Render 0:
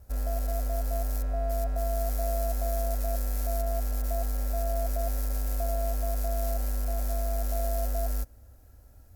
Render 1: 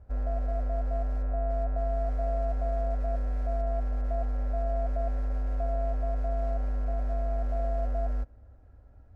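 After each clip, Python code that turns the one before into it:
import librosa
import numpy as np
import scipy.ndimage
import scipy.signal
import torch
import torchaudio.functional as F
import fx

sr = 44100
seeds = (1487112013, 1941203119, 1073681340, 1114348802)

y = scipy.signal.sosfilt(scipy.signal.butter(2, 1700.0, 'lowpass', fs=sr, output='sos'), x)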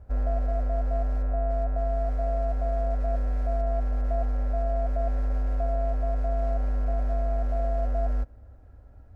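y = fx.rider(x, sr, range_db=10, speed_s=0.5)
y = y * librosa.db_to_amplitude(3.0)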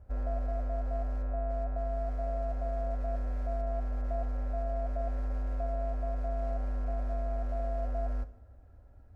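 y = fx.rev_double_slope(x, sr, seeds[0], early_s=0.56, late_s=2.0, knee_db=-18, drr_db=11.5)
y = y * librosa.db_to_amplitude(-5.5)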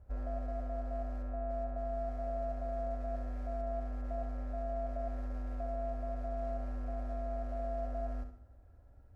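y = fx.echo_feedback(x, sr, ms=68, feedback_pct=34, wet_db=-9.5)
y = y * librosa.db_to_amplitude(-4.0)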